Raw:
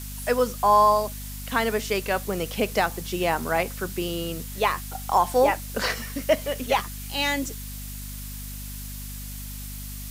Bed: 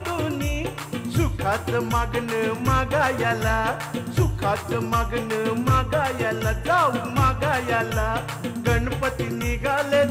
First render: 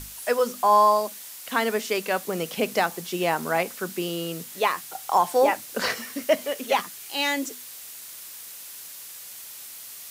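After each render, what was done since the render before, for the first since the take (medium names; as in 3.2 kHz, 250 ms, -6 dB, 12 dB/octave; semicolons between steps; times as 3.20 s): hum notches 50/100/150/200/250 Hz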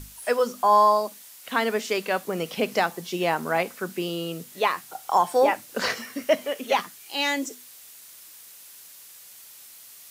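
noise print and reduce 6 dB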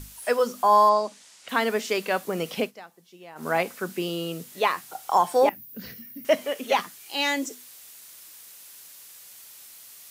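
0.89–1.49 s: low-pass 8.1 kHz 24 dB/octave; 2.60–3.47 s: dip -21 dB, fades 0.12 s; 5.49–6.25 s: FFT filter 180 Hz 0 dB, 610 Hz -24 dB, 1.1 kHz -29 dB, 1.8 kHz -19 dB, 5.2 kHz -16 dB, 8.3 kHz -23 dB, 15 kHz +9 dB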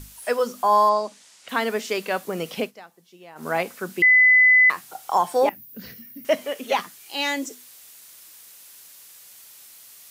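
4.02–4.70 s: bleep 2.01 kHz -11 dBFS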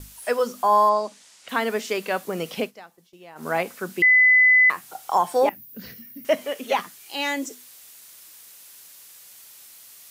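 gate with hold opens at -44 dBFS; dynamic bell 4.6 kHz, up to -5 dB, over -35 dBFS, Q 1.3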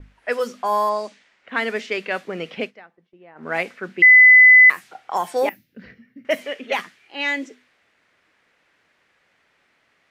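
level-controlled noise filter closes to 1.2 kHz, open at -16.5 dBFS; ten-band graphic EQ 125 Hz -4 dB, 1 kHz -5 dB, 2 kHz +7 dB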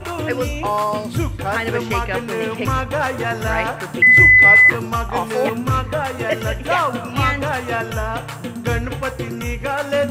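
add bed +0.5 dB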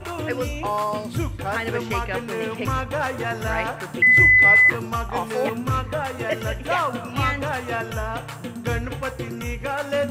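trim -4.5 dB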